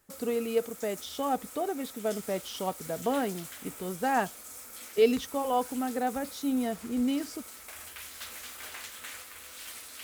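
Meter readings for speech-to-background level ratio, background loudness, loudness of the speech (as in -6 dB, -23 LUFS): 11.5 dB, -43.0 LUFS, -31.5 LUFS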